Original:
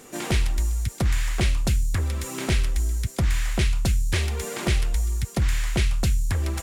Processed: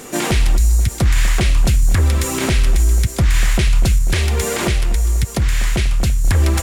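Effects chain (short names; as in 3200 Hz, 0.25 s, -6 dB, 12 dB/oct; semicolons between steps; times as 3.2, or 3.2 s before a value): 0.57–0.82 spectral delete 220–3700 Hz; 3.98–6.25 compressor, threshold -24 dBFS, peak gain reduction 7.5 dB; tape echo 0.244 s, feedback 69%, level -16 dB, low-pass 1900 Hz; maximiser +17.5 dB; gain -5.5 dB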